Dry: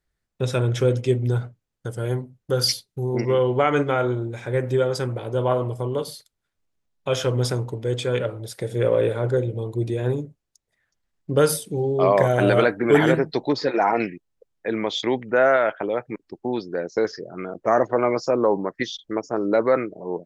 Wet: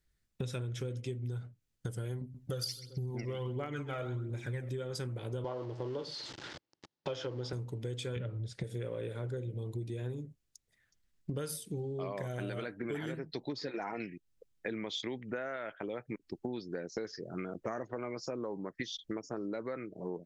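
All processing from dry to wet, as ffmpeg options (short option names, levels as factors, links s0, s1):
-filter_complex "[0:a]asettb=1/sr,asplit=3[s0][s1][s2];[s0]atrim=end=2.214[s3];[s1]atrim=start=2.21:end=4.69,asetpts=PTS-STARTPTS,afade=t=in:d=0.004:c=qsin,afade=t=out:st=2.476:d=0.004:c=qsin,asplit=2[s4][s5];[s5]adelay=131,lowpass=f=2000:p=1,volume=0.224,asplit=2[s6][s7];[s7]adelay=131,lowpass=f=2000:p=1,volume=0.38,asplit=2[s8][s9];[s9]adelay=131,lowpass=f=2000:p=1,volume=0.38,asplit=2[s10][s11];[s11]adelay=131,lowpass=f=2000:p=1,volume=0.38[s12];[s4][s6][s8][s10][s12]amix=inputs=5:normalize=0,atrim=end_sample=109368,aphaser=in_gain=1:out_gain=1:delay=1.8:decay=0.53:speed=1.4:type=triangular[s13];[s2]atrim=start=4.686[s14];[s3][s13]acrossfade=d=0.004:c1=hsin:c2=qsin[s15];[s15][s14]acrossfade=d=0.004:c1=qsin:c2=hsin,asettb=1/sr,asplit=3[s16][s17][s18];[s16]atrim=end=5.444[s19];[s17]atrim=start=5.44:end=7.53,asetpts=PTS-STARTPTS,afade=t=in:d=0.004:c=qsin,afade=t=out:st=2.086:d=0.004:c=qsin,aeval=exprs='val(0)+0.5*0.0224*sgn(val(0))':c=same,highpass=160,equalizer=f=210:t=q:w=4:g=-8,equalizer=f=330:t=q:w=4:g=6,equalizer=f=540:t=q:w=4:g=4,equalizer=f=860:t=q:w=4:g=7,equalizer=f=2400:t=q:w=4:g=-5,equalizer=f=3700:t=q:w=4:g=-3,lowpass=f=5000:w=0.5412,lowpass=f=5000:w=1.3066[s20];[s18]atrim=start=7.526[s21];[s19][s20]acrossfade=d=0.004:c1=hsin:c2=qsin[s22];[s22][s21]acrossfade=d=0.004:c1=qsin:c2=hsin,asettb=1/sr,asplit=3[s23][s24][s25];[s23]atrim=end=8.164[s26];[s24]atrim=start=8.16:end=8.64,asetpts=PTS-STARTPTS,afade=t=in:d=0.004:c=qsin,afade=t=out:st=0.476:d=0.004:c=qsin,lowpass=f=7700:w=0.5412,lowpass=f=7700:w=1.3066,bass=f=250:g=9,treble=f=4000:g=-5[s27];[s25]atrim=start=8.636[s28];[s26][s27]acrossfade=d=0.004:c1=hsin:c2=qsin[s29];[s29][s28]acrossfade=d=0.004:c1=qsin:c2=hsin,equalizer=f=770:t=o:w=2.1:g=-9,acompressor=threshold=0.0158:ratio=16,volume=1.19"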